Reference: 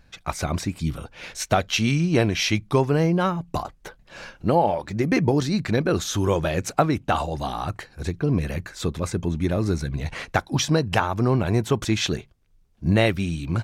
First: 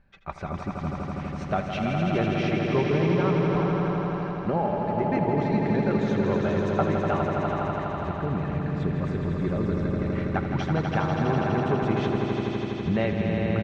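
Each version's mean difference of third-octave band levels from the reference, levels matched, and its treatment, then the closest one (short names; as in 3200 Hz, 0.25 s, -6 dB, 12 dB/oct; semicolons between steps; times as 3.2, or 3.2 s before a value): 10.5 dB: LPF 2100 Hz 12 dB/oct; comb 5.1 ms, depth 35%; swelling echo 82 ms, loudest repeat 5, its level -6 dB; gain -7 dB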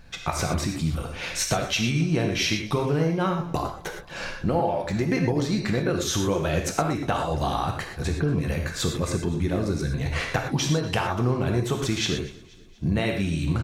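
6.5 dB: compressor 4:1, threshold -29 dBFS, peak gain reduction 13.5 dB; feedback echo 0.24 s, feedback 53%, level -22 dB; non-linear reverb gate 0.14 s flat, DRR 2.5 dB; gain +5 dB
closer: second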